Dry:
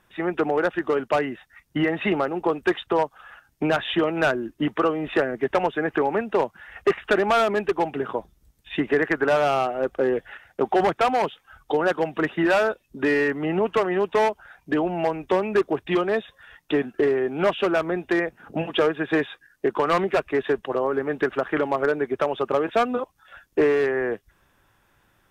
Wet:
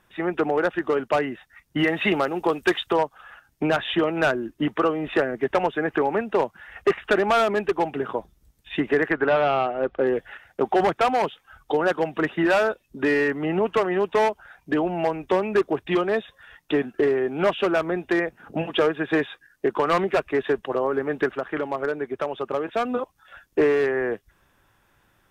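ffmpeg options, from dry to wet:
-filter_complex "[0:a]asettb=1/sr,asplit=3[a][b][c];[a]atrim=end=1.784[d];[b]atrim=start=1.78:end=2.96,asetpts=PTS-STARTPTS,afade=t=in:d=0.004:c=qsin,afade=t=out:st=1.176:d=0.004:c=qsin,highshelf=f=3k:g=11[e];[c]atrim=start=2.956[f];[d][e]acrossfade=d=0.004:c1=hsin:c2=qsin[g];[g][f]acrossfade=d=0.004:c1=qsin:c2=hsin,asettb=1/sr,asplit=3[h][i][j];[h]atrim=end=9.114[k];[i]atrim=start=9.11:end=10.07,asetpts=PTS-STARTPTS,afade=t=in:d=0.004:c=qsin,afade=t=out:st=0.956:d=0.004:c=qsin,lowpass=f=3.8k:w=0.5412,lowpass=f=3.8k:w=1.3066[l];[j]atrim=start=10.066[m];[k][l]acrossfade=d=0.004:c1=hsin:c2=qsin[n];[n][m]acrossfade=d=0.004:c1=qsin:c2=hsin,asplit=3[o][p][q];[o]atrim=end=21.322[r];[p]atrim=start=21.318:end=22.852,asetpts=PTS-STARTPTS,volume=-4dB[s];[q]atrim=start=22.848[t];[r][s]acrossfade=d=0.004:c1=hsin:c2=hsin[u];[u][t]acrossfade=d=0.004:c1=hsin:c2=hsin"

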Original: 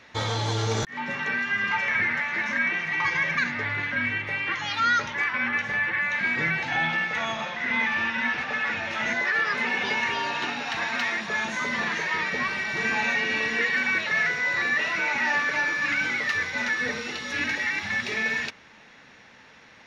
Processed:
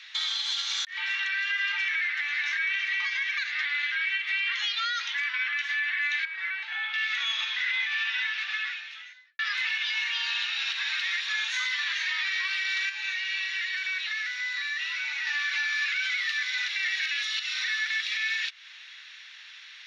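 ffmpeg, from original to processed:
-filter_complex "[0:a]asettb=1/sr,asplit=3[a][b][c];[a]atrim=end=6.254[d];[b]atrim=start=6.25:end=6.94,asetpts=PTS-STARTPTS,afade=t=in:d=0.004:c=qsin,afade=t=out:st=0.686:d=0.004:c=qsin,bandpass=f=430:t=q:w=0.65[e];[c]atrim=start=6.936[f];[d][e]acrossfade=d=0.004:c1=hsin:c2=qsin[g];[g][f]acrossfade=d=0.004:c1=qsin:c2=hsin,asettb=1/sr,asplit=3[h][i][j];[h]atrim=end=12.894[k];[i]atrim=start=12.89:end=15.27,asetpts=PTS-STARTPTS,afade=t=in:d=0.004:c=qsin,afade=t=out:st=2.376:d=0.004:c=qsin,acrossover=split=540|4400[l][m][n];[l]acompressor=threshold=-38dB:ratio=4[o];[m]acompressor=threshold=-36dB:ratio=4[p];[n]acompressor=threshold=-54dB:ratio=4[q];[o][p][q]amix=inputs=3:normalize=0[r];[j]atrim=start=15.266[s];[k][r]acrossfade=d=0.004:c1=hsin:c2=qsin[t];[t][s]acrossfade=d=0.004:c1=qsin:c2=hsin,asplit=4[u][v][w][x];[u]atrim=end=9.39,asetpts=PTS-STARTPTS,afade=t=out:st=8.2:d=1.19:c=qua[y];[v]atrim=start=9.39:end=16.682,asetpts=PTS-STARTPTS,afade=t=in:d=0.004:c=hsin[z];[w]atrim=start=16.678:end=17.872,asetpts=PTS-STARTPTS,areverse[aa];[x]atrim=start=17.868[ab];[y][z]concat=n=2:v=0:a=1[ac];[ac][aa]acrossfade=d=0.004:c1=hsin:c2=hsin[ad];[ad][ab]acrossfade=d=0.004:c1=hsin:c2=hsin,highpass=f=1.4k:w=0.5412,highpass=f=1.4k:w=1.3066,equalizer=f=3.6k:t=o:w=1.1:g=13,alimiter=limit=-20dB:level=0:latency=1:release=201"

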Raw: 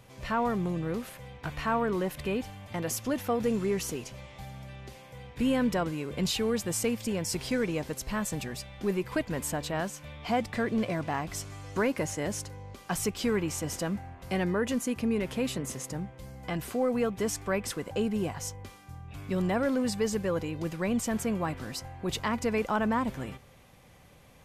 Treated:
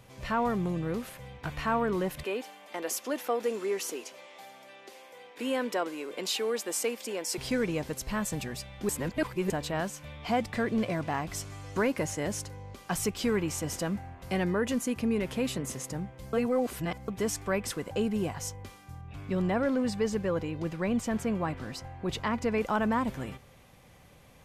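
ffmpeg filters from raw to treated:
-filter_complex "[0:a]asettb=1/sr,asplit=3[a][b][c];[a]atrim=end=2.234[d];[b]atrim=start=2.23:end=7.38,asetpts=PTS-STARTPTS,afade=t=in:d=0.004:c=qsin,afade=t=out:st=5.146:d=0.004:c=qsin,highpass=f=310:w=0.5412,highpass=f=310:w=1.3066[e];[c]atrim=start=7.376[f];[d][e]acrossfade=d=0.004:c1=hsin:c2=qsin[g];[g][f]acrossfade=d=0.004:c1=qsin:c2=hsin,asettb=1/sr,asplit=3[h][i][j];[h]atrim=end=19.014[k];[i]atrim=start=19.01:end=22.61,asetpts=PTS-STARTPTS,afade=t=in:d=0.004:c=qsin,afade=t=out:st=3.596:d=0.004:c=qsin,lowpass=f=3.9k:p=1[l];[j]atrim=start=22.606[m];[k][l]acrossfade=d=0.004:c1=hsin:c2=qsin[n];[n][m]acrossfade=d=0.004:c1=qsin:c2=hsin,asplit=5[o][p][q][r][s];[o]atrim=end=8.892[t];[p]atrim=start=8.888:end=9.502,asetpts=PTS-STARTPTS,areverse[u];[q]atrim=start=9.498:end=16.332[v];[r]atrim=start=16.328:end=17.082,asetpts=PTS-STARTPTS,areverse[w];[s]atrim=start=17.078[x];[t][u]acrossfade=d=0.004:c1=hsin:c2=hsin[y];[y][v]acrossfade=d=0.004:c1=hsin:c2=hsin[z];[z][w]acrossfade=d=0.004:c1=hsin:c2=hsin[aa];[aa][x]acrossfade=d=0.004:c1=hsin:c2=hsin"

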